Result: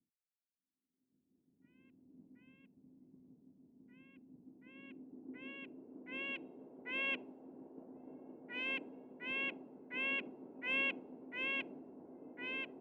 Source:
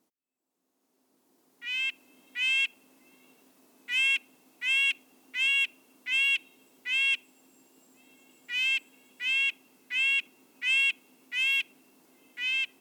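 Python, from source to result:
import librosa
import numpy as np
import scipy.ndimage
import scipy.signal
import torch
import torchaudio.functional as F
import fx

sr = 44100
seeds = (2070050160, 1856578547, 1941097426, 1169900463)

y = fx.notch(x, sr, hz=1200.0, q=13.0)
y = fx.filter_sweep_lowpass(y, sr, from_hz=200.0, to_hz=580.0, start_s=4.04, end_s=6.72, q=1.3)
y = fx.band_widen(y, sr, depth_pct=100)
y = F.gain(torch.from_numpy(y), 11.0).numpy()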